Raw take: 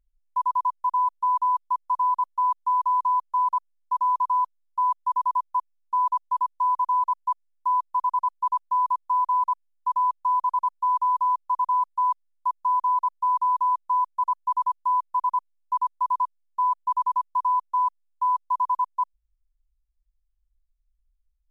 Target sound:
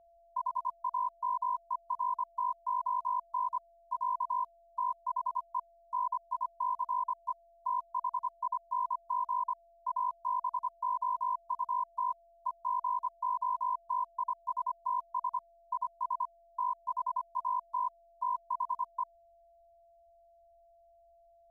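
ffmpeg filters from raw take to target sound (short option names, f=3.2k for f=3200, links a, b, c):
-af "aeval=exprs='val(0)*sin(2*PI*25*n/s)':c=same,aeval=exprs='val(0)+0.00224*sin(2*PI*680*n/s)':c=same,volume=-7.5dB"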